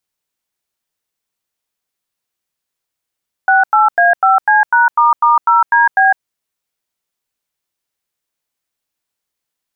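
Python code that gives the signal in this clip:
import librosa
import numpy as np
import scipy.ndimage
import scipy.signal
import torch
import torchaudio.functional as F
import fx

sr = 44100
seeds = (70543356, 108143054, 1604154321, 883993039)

y = fx.dtmf(sr, digits='68A5C#**0DB', tone_ms=156, gap_ms=93, level_db=-9.5)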